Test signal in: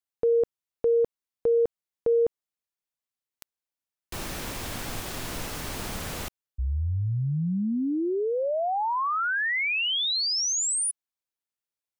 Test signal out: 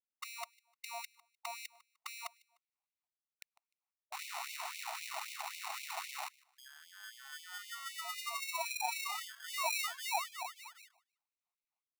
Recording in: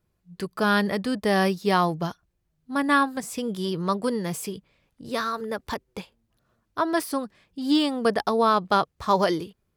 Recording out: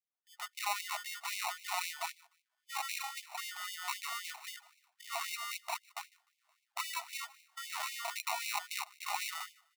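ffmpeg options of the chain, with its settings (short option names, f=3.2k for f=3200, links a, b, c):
-filter_complex "[0:a]aeval=exprs='if(lt(val(0),0),0.708*val(0),val(0))':c=same,afftfilt=real='re*lt(hypot(re,im),0.501)':imag='im*lt(hypot(re,im),0.501)':win_size=1024:overlap=0.75,agate=range=-21dB:threshold=-59dB:ratio=16:release=478:detection=rms,acompressor=threshold=-36dB:ratio=3:attack=4.1:release=23:knee=6:detection=rms,lowpass=f=3.3k:t=q:w=1.6,acrusher=samples=27:mix=1:aa=0.000001,asplit=2[a][b];[b]aecho=0:1:151|302:0.0794|0.0222[c];[a][c]amix=inputs=2:normalize=0,afftfilt=real='re*gte(b*sr/1024,630*pow(2100/630,0.5+0.5*sin(2*PI*3.8*pts/sr)))':imag='im*gte(b*sr/1024,630*pow(2100/630,0.5+0.5*sin(2*PI*3.8*pts/sr)))':win_size=1024:overlap=0.75,volume=4.5dB"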